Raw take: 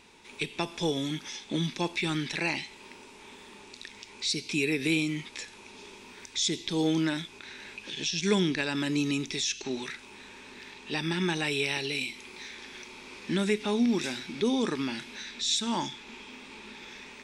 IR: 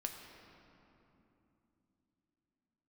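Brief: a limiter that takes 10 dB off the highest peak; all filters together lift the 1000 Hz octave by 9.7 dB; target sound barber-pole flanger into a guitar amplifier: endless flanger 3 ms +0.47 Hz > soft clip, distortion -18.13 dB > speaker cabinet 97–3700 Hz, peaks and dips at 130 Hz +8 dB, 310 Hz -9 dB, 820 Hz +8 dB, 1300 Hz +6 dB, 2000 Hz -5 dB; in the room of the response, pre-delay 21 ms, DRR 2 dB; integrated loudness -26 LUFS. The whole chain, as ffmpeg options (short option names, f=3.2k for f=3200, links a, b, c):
-filter_complex "[0:a]equalizer=f=1k:t=o:g=4.5,alimiter=limit=-22dB:level=0:latency=1,asplit=2[a][b];[1:a]atrim=start_sample=2205,adelay=21[c];[b][c]afir=irnorm=-1:irlink=0,volume=-1dB[d];[a][d]amix=inputs=2:normalize=0,asplit=2[e][f];[f]adelay=3,afreqshift=0.47[g];[e][g]amix=inputs=2:normalize=1,asoftclip=threshold=-24dB,highpass=97,equalizer=f=130:t=q:w=4:g=8,equalizer=f=310:t=q:w=4:g=-9,equalizer=f=820:t=q:w=4:g=8,equalizer=f=1.3k:t=q:w=4:g=6,equalizer=f=2k:t=q:w=4:g=-5,lowpass=f=3.7k:w=0.5412,lowpass=f=3.7k:w=1.3066,volume=10.5dB"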